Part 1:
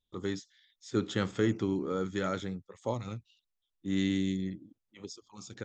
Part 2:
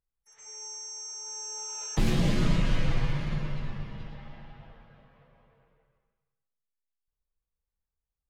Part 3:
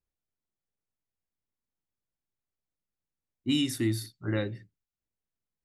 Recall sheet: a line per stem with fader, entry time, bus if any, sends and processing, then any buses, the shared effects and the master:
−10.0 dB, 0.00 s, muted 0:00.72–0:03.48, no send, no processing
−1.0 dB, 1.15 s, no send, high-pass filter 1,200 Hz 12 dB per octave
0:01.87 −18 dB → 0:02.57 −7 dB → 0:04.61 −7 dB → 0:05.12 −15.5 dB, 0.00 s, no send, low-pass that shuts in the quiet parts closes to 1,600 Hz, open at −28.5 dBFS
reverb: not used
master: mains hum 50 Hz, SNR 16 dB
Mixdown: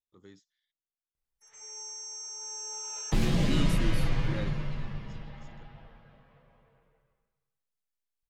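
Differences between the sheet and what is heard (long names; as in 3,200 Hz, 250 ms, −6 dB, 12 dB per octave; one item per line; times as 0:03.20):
stem 1 −10.0 dB → −19.0 dB
stem 2: missing high-pass filter 1,200 Hz 12 dB per octave
master: missing mains hum 50 Hz, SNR 16 dB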